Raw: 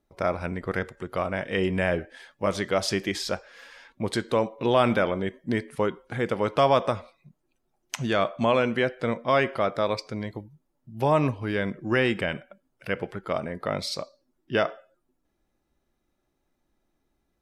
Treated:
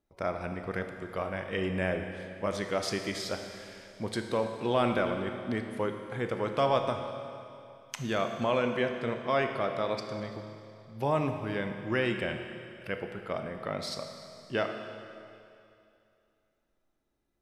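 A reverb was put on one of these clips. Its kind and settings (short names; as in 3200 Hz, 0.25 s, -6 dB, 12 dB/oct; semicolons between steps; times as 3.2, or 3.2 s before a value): Schroeder reverb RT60 2.6 s, combs from 25 ms, DRR 5.5 dB; gain -6.5 dB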